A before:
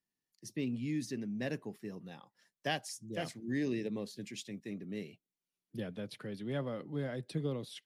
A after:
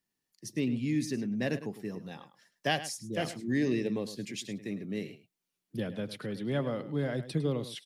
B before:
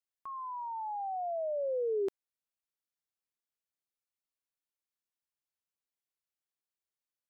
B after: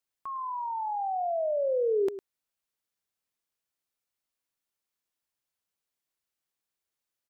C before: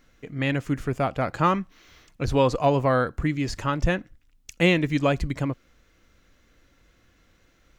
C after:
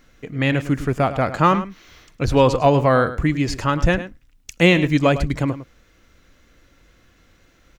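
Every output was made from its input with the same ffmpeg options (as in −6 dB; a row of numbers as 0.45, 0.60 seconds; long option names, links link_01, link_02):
-filter_complex "[0:a]asplit=2[link_01][link_02];[link_02]adelay=105,volume=-13dB,highshelf=frequency=4000:gain=-2.36[link_03];[link_01][link_03]amix=inputs=2:normalize=0,volume=5.5dB"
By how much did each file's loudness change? +5.5, +5.5, +5.5 LU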